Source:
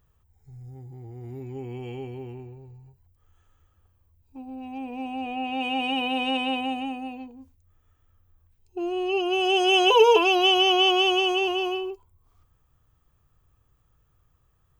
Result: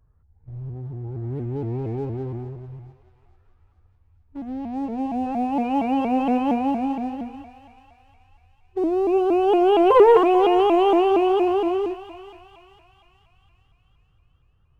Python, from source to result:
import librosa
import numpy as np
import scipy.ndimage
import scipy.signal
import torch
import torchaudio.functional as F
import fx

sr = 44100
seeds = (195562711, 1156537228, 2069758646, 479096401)

p1 = scipy.signal.sosfilt(scipy.signal.butter(4, 1700.0, 'lowpass', fs=sr, output='sos'), x)
p2 = fx.low_shelf(p1, sr, hz=290.0, db=7.5)
p3 = fx.leveller(p2, sr, passes=1)
p4 = p3 + fx.echo_thinned(p3, sr, ms=436, feedback_pct=58, hz=930.0, wet_db=-11, dry=0)
y = fx.vibrato_shape(p4, sr, shape='saw_up', rate_hz=4.3, depth_cents=160.0)